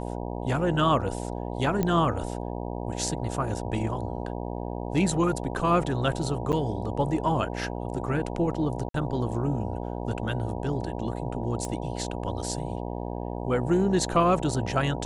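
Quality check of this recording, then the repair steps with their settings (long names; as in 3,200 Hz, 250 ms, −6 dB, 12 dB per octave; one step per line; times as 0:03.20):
mains buzz 60 Hz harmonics 16 −33 dBFS
0:01.83: click −13 dBFS
0:06.52–0:06.53: drop-out 8.3 ms
0:08.89–0:08.94: drop-out 53 ms
0:11.65: click −20 dBFS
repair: click removal
hum removal 60 Hz, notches 16
repair the gap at 0:06.52, 8.3 ms
repair the gap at 0:08.89, 53 ms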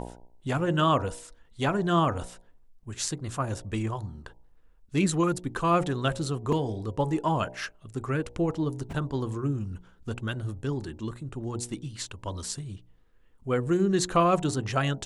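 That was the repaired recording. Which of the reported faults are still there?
0:11.65: click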